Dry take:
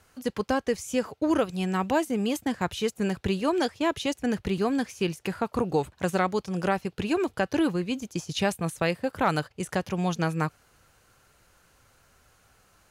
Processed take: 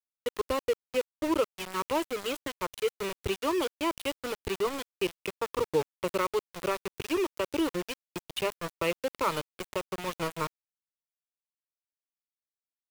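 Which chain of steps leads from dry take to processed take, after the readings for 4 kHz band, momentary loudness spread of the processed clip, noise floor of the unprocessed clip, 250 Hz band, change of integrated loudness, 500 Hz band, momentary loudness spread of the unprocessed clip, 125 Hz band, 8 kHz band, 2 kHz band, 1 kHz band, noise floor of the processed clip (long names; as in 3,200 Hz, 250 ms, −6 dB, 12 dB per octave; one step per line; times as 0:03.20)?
−1.5 dB, 7 LU, −64 dBFS, −8.0 dB, −4.0 dB, −2.0 dB, 5 LU, −12.0 dB, −3.0 dB, −4.5 dB, −4.0 dB, below −85 dBFS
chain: phaser with its sweep stopped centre 1,100 Hz, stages 8
centre clipping without the shift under −31 dBFS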